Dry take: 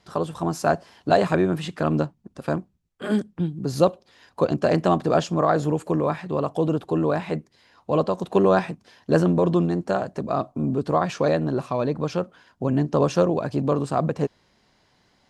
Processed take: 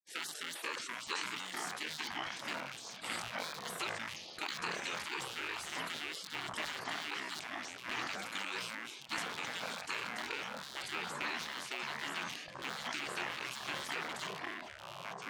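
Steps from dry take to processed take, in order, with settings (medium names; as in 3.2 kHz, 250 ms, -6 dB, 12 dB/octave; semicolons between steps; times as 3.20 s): rattle on loud lows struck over -34 dBFS, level -26 dBFS; high-pass 560 Hz 24 dB/octave; gate -51 dBFS, range -37 dB; spectral gate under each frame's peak -20 dB weak; compression, threshold -43 dBFS, peak gain reduction 16 dB; ever faster or slower copies 684 ms, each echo -5 st, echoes 3; decay stretcher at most 39 dB/s; trim +5 dB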